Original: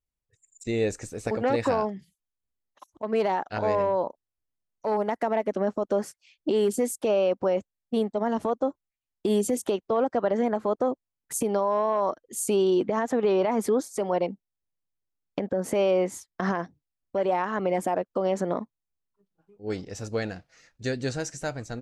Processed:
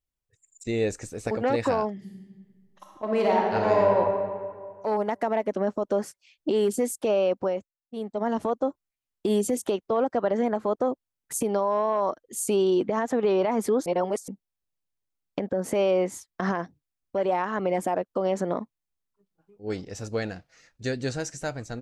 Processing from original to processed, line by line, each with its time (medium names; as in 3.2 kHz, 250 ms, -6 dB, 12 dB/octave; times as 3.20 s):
1.93–3.96 s: reverb throw, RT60 1.9 s, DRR -1.5 dB
7.39–8.26 s: dip -16.5 dB, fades 0.37 s
13.86–14.28 s: reverse